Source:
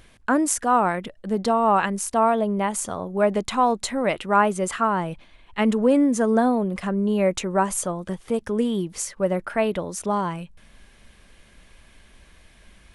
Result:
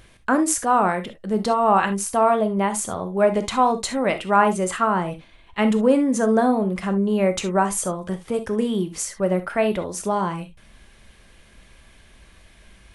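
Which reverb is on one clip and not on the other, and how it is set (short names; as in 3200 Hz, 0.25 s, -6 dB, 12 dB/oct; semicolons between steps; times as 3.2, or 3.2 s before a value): non-linear reverb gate 90 ms flat, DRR 8 dB; gain +1 dB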